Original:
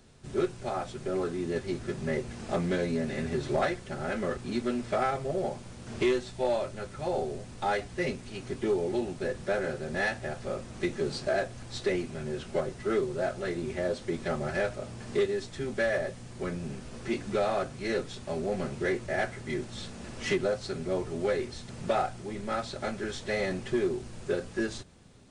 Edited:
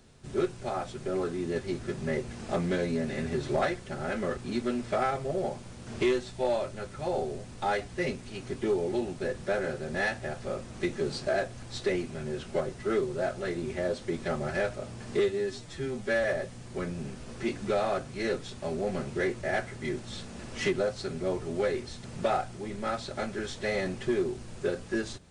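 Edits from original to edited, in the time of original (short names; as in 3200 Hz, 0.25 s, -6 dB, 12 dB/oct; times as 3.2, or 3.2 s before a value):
15.19–15.89 stretch 1.5×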